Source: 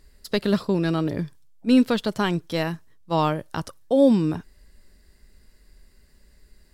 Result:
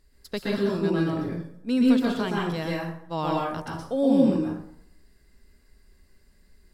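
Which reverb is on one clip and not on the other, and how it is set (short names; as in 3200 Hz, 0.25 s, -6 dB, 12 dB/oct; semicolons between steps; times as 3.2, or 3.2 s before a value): plate-style reverb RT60 0.69 s, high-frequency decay 0.6×, pre-delay 0.11 s, DRR -4 dB; gain -8 dB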